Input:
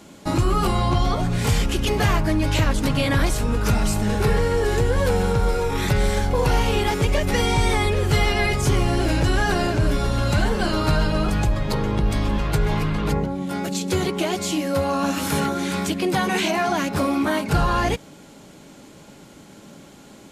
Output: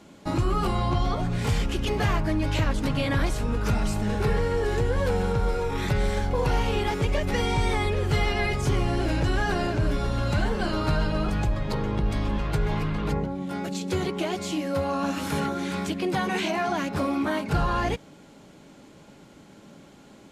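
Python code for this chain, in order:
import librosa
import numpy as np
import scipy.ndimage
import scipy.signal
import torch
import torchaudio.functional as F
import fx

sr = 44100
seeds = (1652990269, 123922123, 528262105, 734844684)

y = fx.high_shelf(x, sr, hz=6600.0, db=-9.0)
y = y * 10.0 ** (-4.5 / 20.0)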